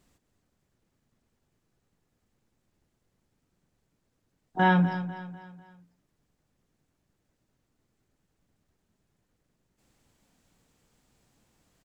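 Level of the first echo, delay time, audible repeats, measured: −13.0 dB, 248 ms, 4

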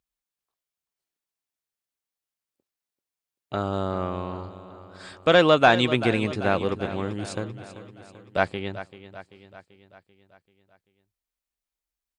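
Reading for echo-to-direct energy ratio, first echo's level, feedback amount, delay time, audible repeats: −12.5 dB, −14.0 dB, 56%, 388 ms, 5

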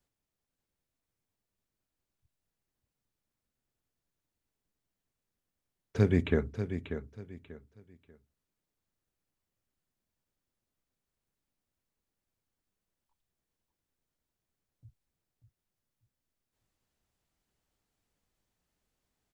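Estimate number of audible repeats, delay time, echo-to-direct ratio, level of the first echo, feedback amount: 3, 589 ms, −9.0 dB, −9.5 dB, 27%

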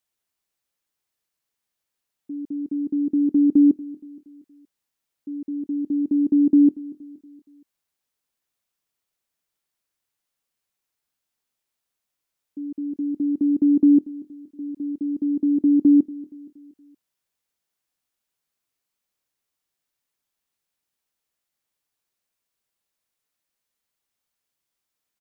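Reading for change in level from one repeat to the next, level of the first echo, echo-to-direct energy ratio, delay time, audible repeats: −6.5 dB, −19.5 dB, −18.5 dB, 235 ms, 3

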